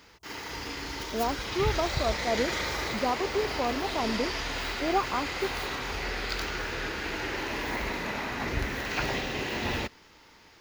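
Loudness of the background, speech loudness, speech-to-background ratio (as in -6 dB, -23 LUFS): -32.0 LUFS, -32.0 LUFS, 0.0 dB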